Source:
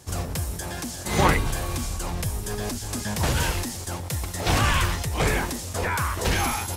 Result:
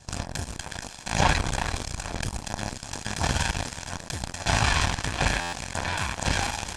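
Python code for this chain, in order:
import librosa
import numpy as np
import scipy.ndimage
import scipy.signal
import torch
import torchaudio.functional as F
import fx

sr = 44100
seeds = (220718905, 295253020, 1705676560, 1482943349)

y = fx.lower_of_two(x, sr, delay_ms=1.2)
y = y + 10.0 ** (-11.0 / 20.0) * np.pad(y, (int(363 * sr / 1000.0), 0))[:len(y)]
y = fx.cheby_harmonics(y, sr, harmonics=(3, 7, 8), levels_db=(-22, -19, -37), full_scale_db=-8.0)
y = scipy.signal.sosfilt(scipy.signal.butter(4, 8300.0, 'lowpass', fs=sr, output='sos'), y)
y = fx.buffer_glitch(y, sr, at_s=(5.4,), block=512, repeats=10)
y = fx.env_flatten(y, sr, amount_pct=50)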